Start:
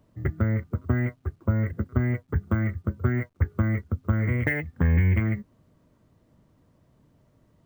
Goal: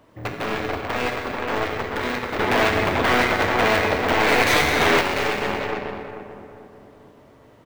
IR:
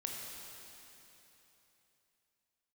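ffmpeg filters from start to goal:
-filter_complex "[0:a]aeval=exprs='0.335*sin(PI/2*8.91*val(0)/0.335)':c=same,lowshelf=f=490:g=-7.5,asplit=2[a][b];[b]adelay=438,lowpass=f=1.2k:p=1,volume=-6dB,asplit=2[c][d];[d]adelay=438,lowpass=f=1.2k:p=1,volume=0.49,asplit=2[e][f];[f]adelay=438,lowpass=f=1.2k:p=1,volume=0.49,asplit=2[g][h];[h]adelay=438,lowpass=f=1.2k:p=1,volume=0.49,asplit=2[i][j];[j]adelay=438,lowpass=f=1.2k:p=1,volume=0.49,asplit=2[k][l];[l]adelay=438,lowpass=f=1.2k:p=1,volume=0.49[m];[a][c][e][g][i][k][m]amix=inputs=7:normalize=0,volume=20.5dB,asoftclip=hard,volume=-20.5dB,bass=f=250:g=-10,treble=f=4k:g=-9[n];[1:a]atrim=start_sample=2205,afade=t=out:st=0.44:d=0.01,atrim=end_sample=19845[o];[n][o]afir=irnorm=-1:irlink=0,aeval=exprs='0.282*(cos(1*acos(clip(val(0)/0.282,-1,1)))-cos(1*PI/2))+0.0708*(cos(4*acos(clip(val(0)/0.282,-1,1)))-cos(4*PI/2))+0.0178*(cos(5*acos(clip(val(0)/0.282,-1,1)))-cos(5*PI/2))+0.0251*(cos(6*acos(clip(val(0)/0.282,-1,1)))-cos(6*PI/2))+0.0282*(cos(7*acos(clip(val(0)/0.282,-1,1)))-cos(7*PI/2))':c=same,asettb=1/sr,asplit=3[p][q][r];[p]atrim=end=2.394[s];[q]atrim=start=2.39:end=5.01,asetpts=PTS-STARTPTS,afade=t=in:d=0.004:c=qsin,afade=t=out:st=2.616:d=0.004:c=qsin,acontrast=67[t];[r]atrim=start=5.006[u];[s][t]acrossfade=d=0.004:c1=hsin:c2=qsin[v];[v][u]acrossfade=d=0.004:c1=qsin:c2=hsin"

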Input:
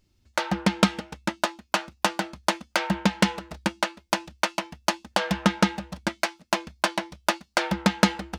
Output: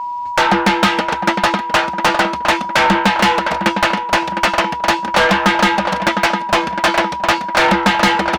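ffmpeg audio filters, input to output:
-filter_complex "[0:a]asplit=2[a][b];[b]adelay=709,lowpass=f=2.7k:p=1,volume=-16dB,asplit=2[c][d];[d]adelay=709,lowpass=f=2.7k:p=1,volume=0.49,asplit=2[e][f];[f]adelay=709,lowpass=f=2.7k:p=1,volume=0.49,asplit=2[g][h];[h]adelay=709,lowpass=f=2.7k:p=1,volume=0.49[i];[a][c][e][g][i]amix=inputs=5:normalize=0,aeval=exprs='val(0)+0.00631*sin(2*PI*970*n/s)':c=same,asplit=2[j][k];[k]highpass=f=720:p=1,volume=32dB,asoftclip=type=tanh:threshold=-1.5dB[l];[j][l]amix=inputs=2:normalize=0,lowpass=f=2.2k:p=1,volume=-6dB"

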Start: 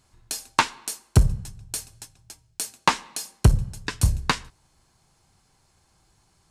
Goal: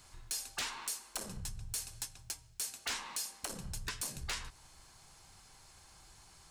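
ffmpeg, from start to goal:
-filter_complex "[0:a]afftfilt=real='re*lt(hypot(re,im),0.224)':imag='im*lt(hypot(re,im),0.224)':win_size=1024:overlap=0.75,acrossover=split=170|5800[a][b][c];[b]asoftclip=type=tanh:threshold=-25.5dB[d];[a][d][c]amix=inputs=3:normalize=0,alimiter=limit=-21dB:level=0:latency=1:release=88,acompressor=threshold=-42dB:ratio=4,asoftclip=type=hard:threshold=-37.5dB,equalizer=f=190:w=0.33:g=-8.5,volume=7dB"

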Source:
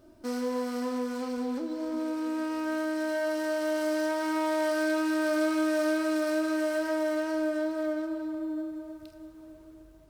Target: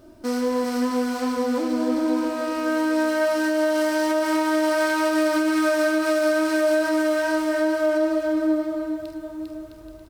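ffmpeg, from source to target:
-af "aecho=1:1:400|660|829|938.8|1010:0.631|0.398|0.251|0.158|0.1,alimiter=limit=-21dB:level=0:latency=1:release=69,volume=7.5dB"

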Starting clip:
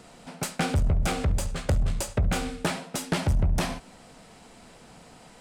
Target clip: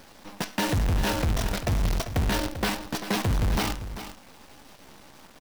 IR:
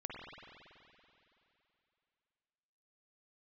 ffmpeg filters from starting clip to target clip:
-af "aresample=11025,asoftclip=type=tanh:threshold=-23.5dB,aresample=44100,asetrate=52444,aresample=44100,atempo=0.840896,acrusher=bits=6:dc=4:mix=0:aa=0.000001,aecho=1:1:393:0.266,volume=3dB"

